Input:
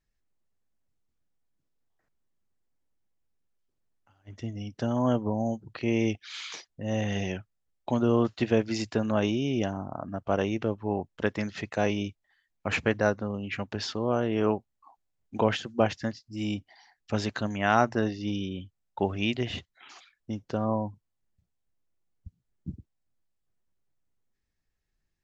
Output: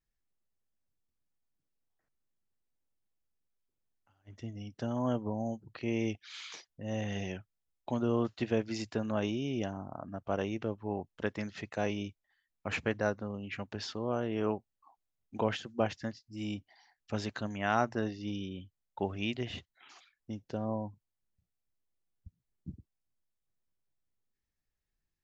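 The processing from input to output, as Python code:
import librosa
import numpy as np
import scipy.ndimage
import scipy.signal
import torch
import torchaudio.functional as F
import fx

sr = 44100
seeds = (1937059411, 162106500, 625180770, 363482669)

y = fx.peak_eq(x, sr, hz=1200.0, db=-7.5, octaves=0.5, at=(20.33, 20.84))
y = F.gain(torch.from_numpy(y), -6.5).numpy()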